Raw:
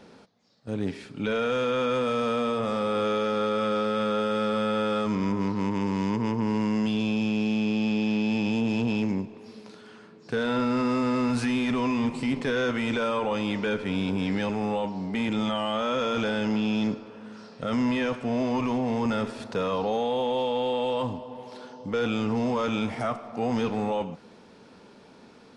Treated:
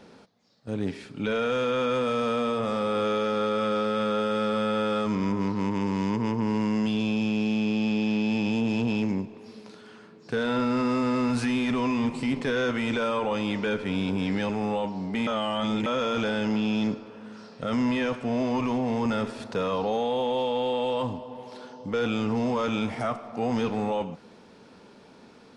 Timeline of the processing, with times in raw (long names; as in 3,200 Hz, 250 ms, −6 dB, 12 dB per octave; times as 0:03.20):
0:15.27–0:15.86: reverse